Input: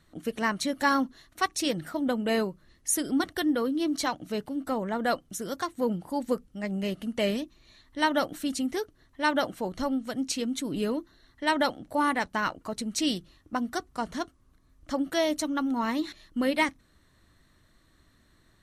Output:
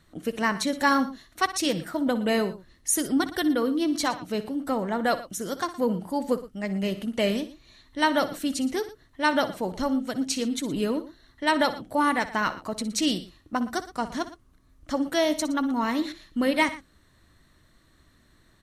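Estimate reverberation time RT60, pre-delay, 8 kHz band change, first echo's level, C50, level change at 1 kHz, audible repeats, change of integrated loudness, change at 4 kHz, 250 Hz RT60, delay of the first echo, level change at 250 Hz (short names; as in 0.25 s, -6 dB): none, none, +2.5 dB, -14.5 dB, none, +2.5 dB, 2, +2.5 dB, +2.5 dB, none, 61 ms, +2.5 dB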